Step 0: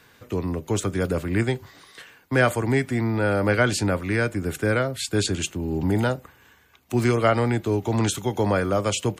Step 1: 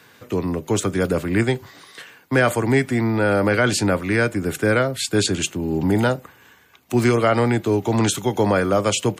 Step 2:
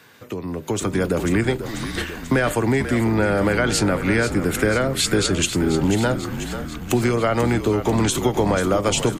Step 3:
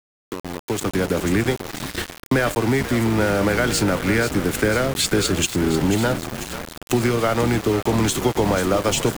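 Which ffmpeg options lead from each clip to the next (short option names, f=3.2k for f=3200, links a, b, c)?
-af "highpass=110,alimiter=level_in=10.5dB:limit=-1dB:release=50:level=0:latency=1,volume=-6dB"
-filter_complex "[0:a]acompressor=threshold=-27dB:ratio=6,asplit=9[a][b][c][d][e][f][g][h][i];[b]adelay=490,afreqshift=-49,volume=-10dB[j];[c]adelay=980,afreqshift=-98,volume=-14dB[k];[d]adelay=1470,afreqshift=-147,volume=-18dB[l];[e]adelay=1960,afreqshift=-196,volume=-22dB[m];[f]adelay=2450,afreqshift=-245,volume=-26.1dB[n];[g]adelay=2940,afreqshift=-294,volume=-30.1dB[o];[h]adelay=3430,afreqshift=-343,volume=-34.1dB[p];[i]adelay=3920,afreqshift=-392,volume=-38.1dB[q];[a][j][k][l][m][n][o][p][q]amix=inputs=9:normalize=0,dynaudnorm=f=170:g=9:m=10dB"
-af "aeval=exprs='val(0)*gte(abs(val(0)),0.0596)':c=same"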